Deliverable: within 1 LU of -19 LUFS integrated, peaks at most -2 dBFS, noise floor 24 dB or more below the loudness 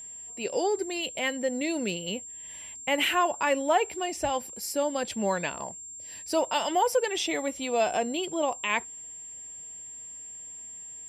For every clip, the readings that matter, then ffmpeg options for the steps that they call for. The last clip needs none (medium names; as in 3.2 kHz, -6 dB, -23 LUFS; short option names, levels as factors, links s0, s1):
steady tone 7.4 kHz; tone level -40 dBFS; loudness -28.5 LUFS; peak level -12.5 dBFS; loudness target -19.0 LUFS
-> -af "bandreject=f=7400:w=30"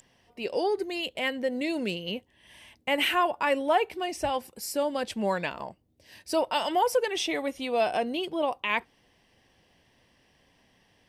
steady tone not found; loudness -28.5 LUFS; peak level -13.0 dBFS; loudness target -19.0 LUFS
-> -af "volume=2.99"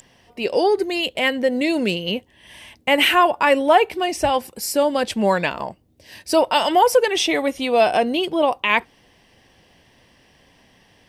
loudness -19.0 LUFS; peak level -3.5 dBFS; noise floor -56 dBFS